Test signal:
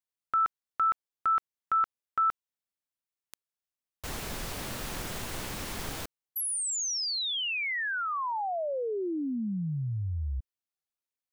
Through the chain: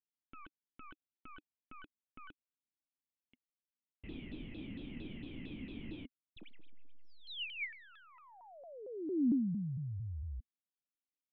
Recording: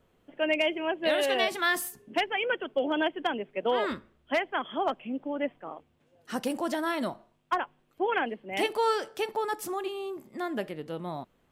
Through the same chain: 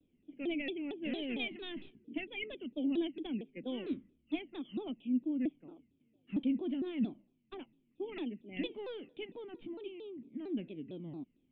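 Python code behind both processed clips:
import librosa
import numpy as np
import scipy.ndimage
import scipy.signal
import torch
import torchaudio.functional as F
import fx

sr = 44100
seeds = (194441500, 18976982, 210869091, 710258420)

y = fx.tracing_dist(x, sr, depth_ms=0.071)
y = fx.formant_cascade(y, sr, vowel='i')
y = fx.vibrato_shape(y, sr, shape='saw_down', rate_hz=4.4, depth_cents=250.0)
y = y * 10.0 ** (3.0 / 20.0)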